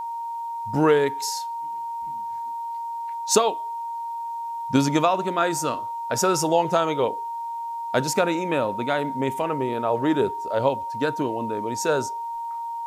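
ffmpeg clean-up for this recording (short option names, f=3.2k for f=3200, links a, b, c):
-af "adeclick=t=4,bandreject=f=930:w=30,agate=range=-21dB:threshold=-23dB"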